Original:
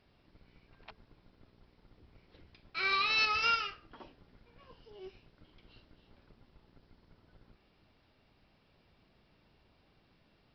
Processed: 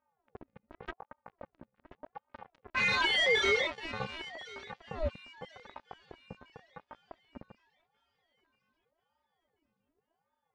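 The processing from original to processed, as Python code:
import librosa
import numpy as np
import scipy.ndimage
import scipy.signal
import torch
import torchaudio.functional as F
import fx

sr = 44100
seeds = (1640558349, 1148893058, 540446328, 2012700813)

p1 = fx.octave_divider(x, sr, octaves=1, level_db=-3.0)
p2 = fx.env_lowpass(p1, sr, base_hz=1300.0, full_db=-30.5)
p3 = p2 + 10.0 ** (-23.5 / 20.0) * np.pad(p2, (int(661 * sr / 1000.0), 0))[:len(p2)]
p4 = np.clip(10.0 ** (34.5 / 20.0) * p3, -1.0, 1.0) / 10.0 ** (34.5 / 20.0)
p5 = p3 + (p4 * 10.0 ** (-11.0 / 20.0))
p6 = fx.robotise(p5, sr, hz=325.0)
p7 = fx.dereverb_blind(p6, sr, rt60_s=0.52)
p8 = fx.leveller(p7, sr, passes=5)
p9 = scipy.signal.sosfilt(scipy.signal.butter(2, 4900.0, 'lowpass', fs=sr, output='sos'), p8)
p10 = fx.high_shelf(p9, sr, hz=2800.0, db=-10.5)
p11 = fx.echo_wet_highpass(p10, sr, ms=1035, feedback_pct=38, hz=1500.0, wet_db=-16.5)
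y = fx.ring_lfo(p11, sr, carrier_hz=550.0, swing_pct=65, hz=0.87)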